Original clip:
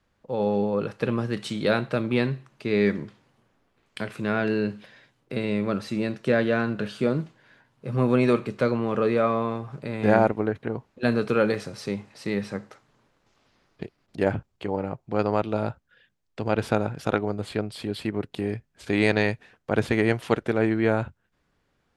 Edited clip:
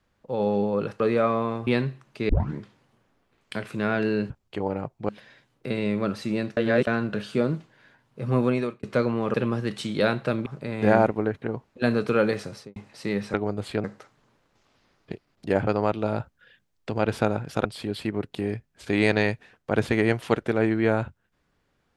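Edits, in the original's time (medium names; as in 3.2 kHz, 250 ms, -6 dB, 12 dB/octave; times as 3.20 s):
1.00–2.12 s: swap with 9.00–9.67 s
2.74 s: tape start 0.27 s
6.23–6.53 s: reverse
8.05–8.49 s: fade out
11.72–11.97 s: studio fade out
14.38–15.17 s: move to 4.75 s
15.70–16.40 s: gain +3.5 dB
17.15–17.65 s: move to 12.55 s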